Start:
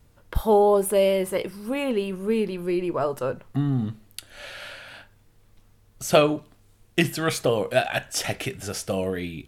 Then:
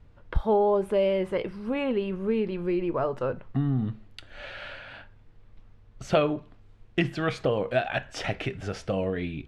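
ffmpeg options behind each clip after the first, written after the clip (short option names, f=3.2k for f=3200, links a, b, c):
-af "lowpass=3k,lowshelf=f=68:g=7,acompressor=threshold=-27dB:ratio=1.5"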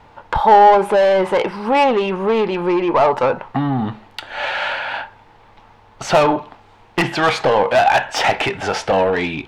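-filter_complex "[0:a]asplit=2[a][b];[b]highpass=f=720:p=1,volume=24dB,asoftclip=type=tanh:threshold=-9dB[c];[a][c]amix=inputs=2:normalize=0,lowpass=f=5.5k:p=1,volume=-6dB,equalizer=f=870:w=3.3:g=13.5,volume=1dB"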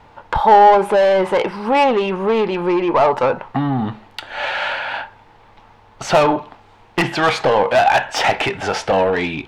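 -af anull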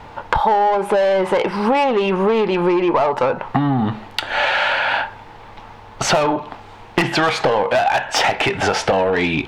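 -af "acompressor=threshold=-23dB:ratio=6,volume=8.5dB"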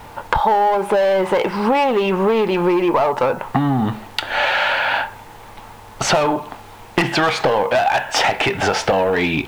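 -af "acrusher=bits=7:mix=0:aa=0.000001"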